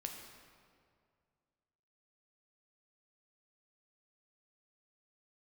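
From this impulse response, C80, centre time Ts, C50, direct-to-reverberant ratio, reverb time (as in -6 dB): 5.5 dB, 55 ms, 4.5 dB, 2.0 dB, 2.2 s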